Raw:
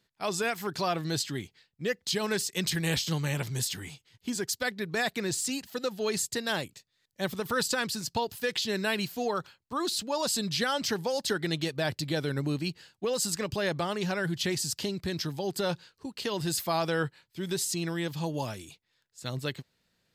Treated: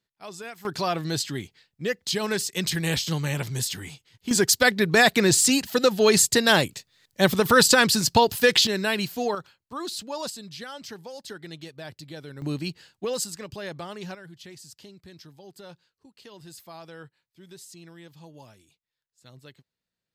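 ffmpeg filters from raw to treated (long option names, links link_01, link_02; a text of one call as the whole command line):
ffmpeg -i in.wav -af "asetnsamples=nb_out_samples=441:pad=0,asendcmd='0.65 volume volume 3dB;4.31 volume volume 12dB;8.67 volume volume 4dB;9.35 volume volume -2.5dB;10.3 volume volume -10dB;12.42 volume volume 1dB;13.24 volume volume -6dB;14.15 volume volume -15dB',volume=-9dB" out.wav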